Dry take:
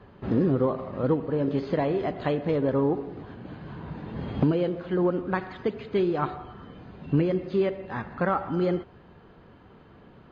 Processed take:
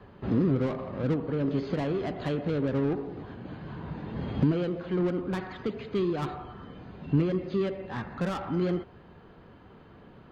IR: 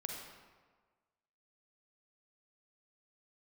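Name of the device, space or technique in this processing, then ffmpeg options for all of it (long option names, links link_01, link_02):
one-band saturation: -filter_complex "[0:a]acrossover=split=320|3000[link_01][link_02][link_03];[link_02]asoftclip=type=tanh:threshold=-32.5dB[link_04];[link_01][link_04][link_03]amix=inputs=3:normalize=0"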